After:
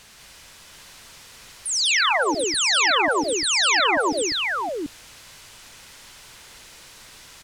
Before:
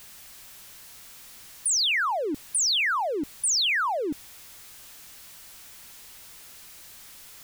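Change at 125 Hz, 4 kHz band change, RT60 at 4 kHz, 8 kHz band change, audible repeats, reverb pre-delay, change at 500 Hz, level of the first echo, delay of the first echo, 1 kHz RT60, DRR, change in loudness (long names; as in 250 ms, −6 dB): +7.0 dB, +5.5 dB, no reverb audible, +2.0 dB, 5, no reverb audible, +7.5 dB, −13.0 dB, 63 ms, no reverb audible, no reverb audible, +4.5 dB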